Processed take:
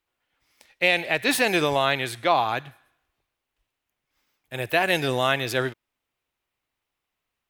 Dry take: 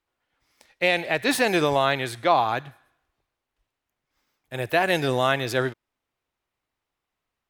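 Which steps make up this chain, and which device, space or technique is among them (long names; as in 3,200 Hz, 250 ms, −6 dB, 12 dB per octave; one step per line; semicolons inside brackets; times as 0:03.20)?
presence and air boost (parametric band 2,700 Hz +4.5 dB 0.97 octaves; high-shelf EQ 9,200 Hz +6.5 dB)
level −1.5 dB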